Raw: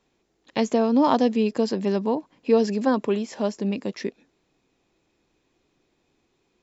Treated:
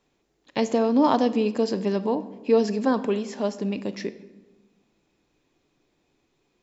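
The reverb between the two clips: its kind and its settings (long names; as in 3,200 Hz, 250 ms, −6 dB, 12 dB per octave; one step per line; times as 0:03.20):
rectangular room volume 560 cubic metres, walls mixed, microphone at 0.36 metres
level −1 dB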